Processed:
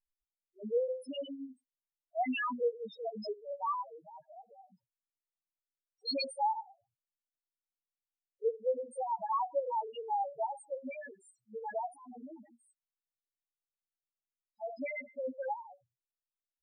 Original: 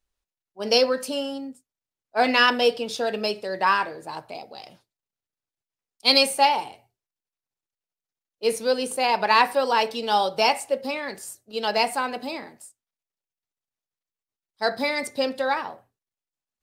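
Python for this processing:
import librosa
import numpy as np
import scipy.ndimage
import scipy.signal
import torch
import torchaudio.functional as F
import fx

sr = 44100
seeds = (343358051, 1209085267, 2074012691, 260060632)

y = fx.harmonic_tremolo(x, sr, hz=9.1, depth_pct=70, crossover_hz=1100.0)
y = fx.over_compress(y, sr, threshold_db=-39.0, ratio=-1.0, at=(11.92, 12.35))
y = fx.spec_topn(y, sr, count=1)
y = F.gain(torch.from_numpy(y), -1.5).numpy()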